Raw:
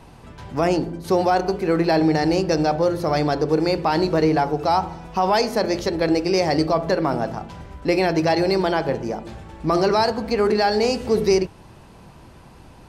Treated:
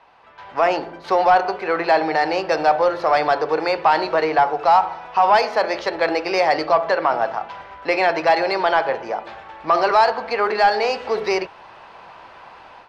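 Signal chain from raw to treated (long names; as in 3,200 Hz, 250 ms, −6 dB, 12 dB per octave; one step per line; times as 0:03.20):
three-way crossover with the lows and the highs turned down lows −19 dB, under 560 Hz, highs −19 dB, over 5,200 Hz
automatic gain control gain up to 11.5 dB
mid-hump overdrive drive 9 dB, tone 1,600 Hz, clips at −1 dBFS
level −2.5 dB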